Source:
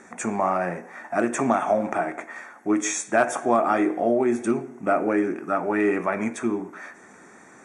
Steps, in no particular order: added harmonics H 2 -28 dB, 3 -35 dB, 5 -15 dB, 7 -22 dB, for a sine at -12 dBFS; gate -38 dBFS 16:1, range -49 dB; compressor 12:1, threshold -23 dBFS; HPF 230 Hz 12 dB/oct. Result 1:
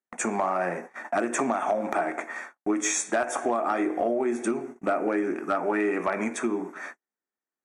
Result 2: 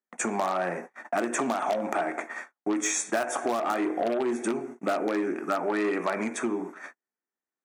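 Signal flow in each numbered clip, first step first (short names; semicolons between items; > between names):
compressor > HPF > added harmonics > gate; gate > added harmonics > compressor > HPF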